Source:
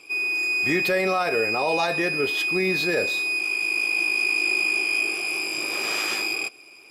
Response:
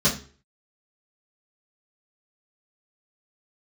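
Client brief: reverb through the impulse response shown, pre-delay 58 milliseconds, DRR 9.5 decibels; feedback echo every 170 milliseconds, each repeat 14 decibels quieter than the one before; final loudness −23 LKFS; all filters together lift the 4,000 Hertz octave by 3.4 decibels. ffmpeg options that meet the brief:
-filter_complex "[0:a]equalizer=frequency=4000:width_type=o:gain=4.5,aecho=1:1:170|340:0.2|0.0399,asplit=2[link_01][link_02];[1:a]atrim=start_sample=2205,adelay=58[link_03];[link_02][link_03]afir=irnorm=-1:irlink=0,volume=-24dB[link_04];[link_01][link_04]amix=inputs=2:normalize=0,volume=-1.5dB"

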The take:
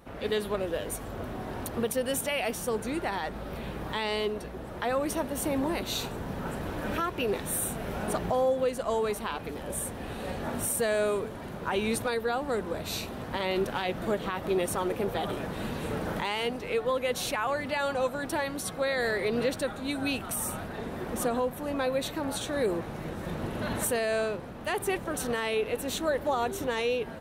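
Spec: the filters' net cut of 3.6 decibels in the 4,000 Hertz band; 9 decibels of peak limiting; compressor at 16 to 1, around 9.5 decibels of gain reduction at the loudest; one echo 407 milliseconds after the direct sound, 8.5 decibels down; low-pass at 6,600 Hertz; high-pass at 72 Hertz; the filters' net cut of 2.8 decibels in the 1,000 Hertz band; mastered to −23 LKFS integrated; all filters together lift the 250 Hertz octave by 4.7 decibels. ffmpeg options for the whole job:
ffmpeg -i in.wav -af "highpass=72,lowpass=6600,equalizer=frequency=250:width_type=o:gain=6,equalizer=frequency=1000:width_type=o:gain=-4,equalizer=frequency=4000:width_type=o:gain=-4,acompressor=threshold=-31dB:ratio=16,alimiter=level_in=5dB:limit=-24dB:level=0:latency=1,volume=-5dB,aecho=1:1:407:0.376,volume=14.5dB" out.wav

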